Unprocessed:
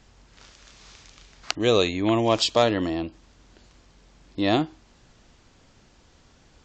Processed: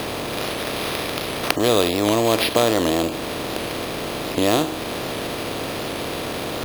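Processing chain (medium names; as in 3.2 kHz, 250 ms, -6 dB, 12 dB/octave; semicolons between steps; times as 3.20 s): spectral levelling over time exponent 0.4; in parallel at +3 dB: compression, threshold -25 dBFS, peak gain reduction 13.5 dB; on the sum: sample-and-hold 6×; warped record 78 rpm, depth 100 cents; trim -4 dB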